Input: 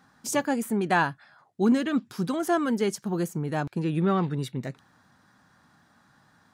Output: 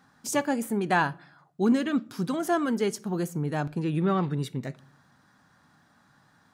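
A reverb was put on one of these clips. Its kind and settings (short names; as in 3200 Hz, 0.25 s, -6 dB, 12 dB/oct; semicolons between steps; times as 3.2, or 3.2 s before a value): shoebox room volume 590 m³, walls furnished, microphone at 0.3 m; gain -1 dB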